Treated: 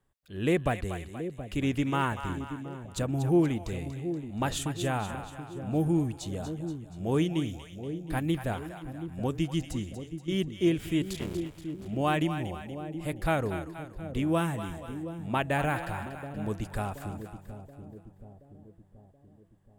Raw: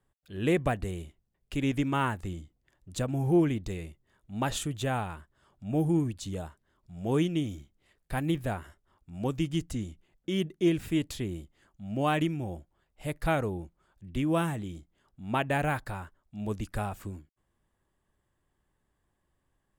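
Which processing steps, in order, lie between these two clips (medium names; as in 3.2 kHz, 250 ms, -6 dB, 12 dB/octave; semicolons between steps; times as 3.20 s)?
11.13–11.87 s: cycle switcher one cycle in 3, muted; two-band feedback delay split 600 Hz, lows 727 ms, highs 238 ms, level -9.5 dB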